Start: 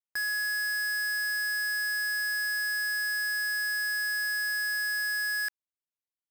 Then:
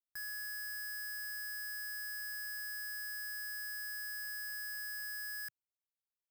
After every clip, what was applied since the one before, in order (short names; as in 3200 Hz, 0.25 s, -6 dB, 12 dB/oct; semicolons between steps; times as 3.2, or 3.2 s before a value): graphic EQ 125/250/500/1000/2000/4000/8000 Hz +4/-11/-10/-7/-8/-9/-5 dB; gain -3.5 dB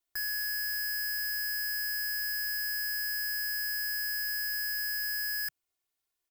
comb 2.8 ms, depth 84%; gain +7.5 dB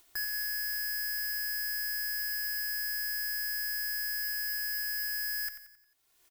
upward compressor, threshold -46 dBFS; on a send: feedback echo 89 ms, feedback 47%, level -10.5 dB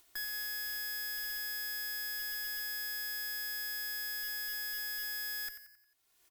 de-hum 61.71 Hz, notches 17; tube stage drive 32 dB, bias 0.5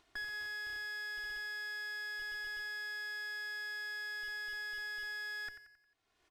tape spacing loss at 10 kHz 23 dB; gain +5 dB